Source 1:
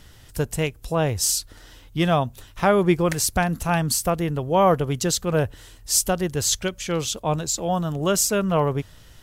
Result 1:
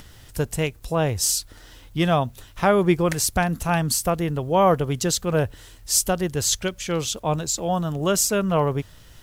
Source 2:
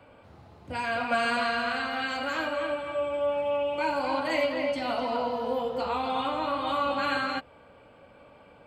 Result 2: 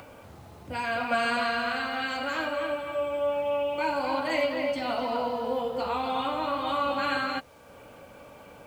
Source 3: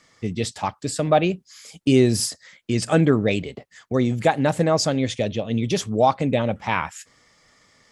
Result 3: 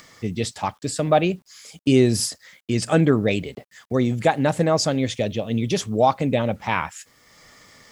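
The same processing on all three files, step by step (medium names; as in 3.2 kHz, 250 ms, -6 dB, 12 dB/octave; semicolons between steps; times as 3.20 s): upward compressor, threshold -41 dBFS; bit crusher 10-bit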